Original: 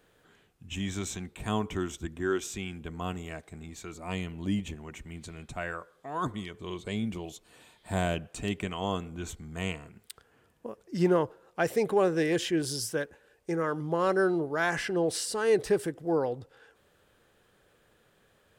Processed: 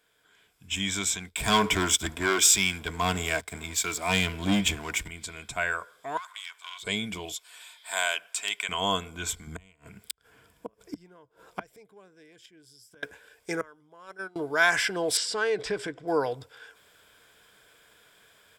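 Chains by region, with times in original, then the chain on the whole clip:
0:01.29–0:05.08: leveller curve on the samples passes 3 + multiband upward and downward expander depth 40%
0:06.17–0:06.83: gain on one half-wave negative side −7 dB + high-pass filter 990 Hz 24 dB per octave + downward compressor 12 to 1, threshold −44 dBFS
0:07.34–0:08.69: high-pass filter 910 Hz + de-essing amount 50%
0:09.47–0:13.03: low-shelf EQ 330 Hz +9.5 dB + gate with flip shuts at −23 dBFS, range −33 dB
0:13.61–0:14.36: noise gate −22 dBFS, range −26 dB + parametric band 4,400 Hz −8 dB 0.22 octaves
0:15.17–0:16.08: high-frequency loss of the air 110 metres + downward compressor 2.5 to 1, threshold −28 dBFS
whole clip: tilt shelving filter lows −7.5 dB, about 760 Hz; automatic gain control gain up to 11 dB; EQ curve with evenly spaced ripples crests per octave 1.7, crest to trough 7 dB; level −7.5 dB

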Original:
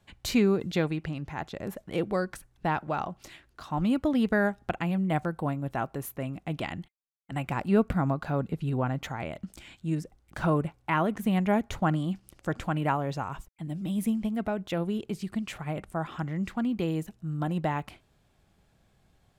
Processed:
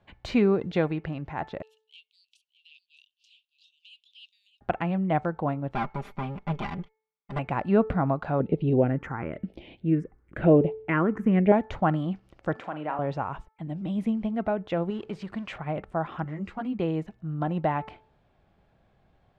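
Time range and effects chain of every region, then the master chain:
0:01.62–0:04.61: Butterworth high-pass 2,700 Hz 96 dB per octave + high-shelf EQ 4,900 Hz −6.5 dB + single-tap delay 611 ms −14 dB
0:05.75–0:07.39: lower of the sound and its delayed copy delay 0.89 ms + comb filter 5 ms, depth 73%
0:08.40–0:11.52: parametric band 440 Hz +11.5 dB 1.7 octaves + all-pass phaser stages 4, 1 Hz, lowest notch 600–1,400 Hz
0:12.56–0:12.99: high-pass filter 280 Hz + downward compressor 1.5 to 1, threshold −42 dBFS + flutter between parallel walls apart 6.8 metres, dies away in 0.26 s
0:14.90–0:15.56: mu-law and A-law mismatch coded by mu + low-shelf EQ 500 Hz −5.5 dB
0:16.24–0:16.80: high-shelf EQ 7,400 Hz +10.5 dB + notch filter 3,500 Hz, Q 19 + string-ensemble chorus
whole clip: low-pass filter 3,000 Hz 12 dB per octave; parametric band 660 Hz +5 dB 1.5 octaves; hum removal 437.4 Hz, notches 5

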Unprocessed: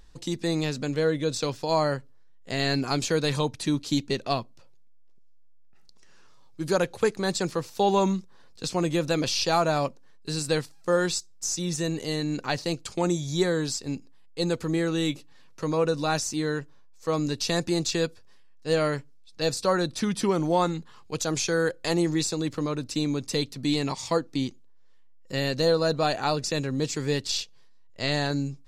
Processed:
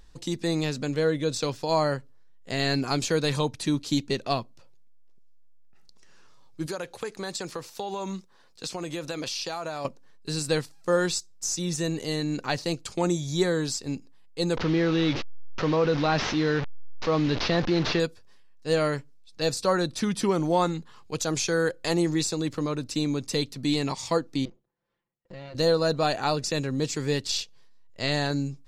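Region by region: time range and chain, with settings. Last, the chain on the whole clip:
0:06.66–0:09.85: low-shelf EQ 280 Hz −9.5 dB + downward compressor 12 to 1, threshold −28 dBFS
0:14.57–0:18.00: linear delta modulator 32 kbit/s, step −31.5 dBFS + low-pass filter 4,300 Hz + envelope flattener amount 50%
0:24.45–0:25.55: lower of the sound and its delayed copy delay 5.8 ms + downward compressor 3 to 1, threshold −38 dBFS + head-to-tape spacing loss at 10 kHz 31 dB
whole clip: no processing

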